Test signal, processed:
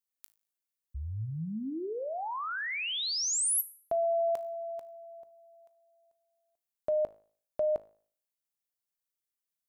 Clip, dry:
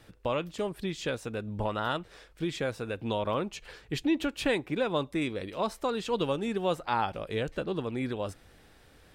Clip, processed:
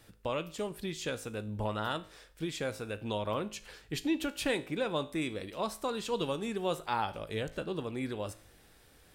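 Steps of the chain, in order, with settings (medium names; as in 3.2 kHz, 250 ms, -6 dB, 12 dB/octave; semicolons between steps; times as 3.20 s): treble shelf 6.5 kHz +10.5 dB; feedback comb 53 Hz, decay 0.49 s, harmonics all, mix 50%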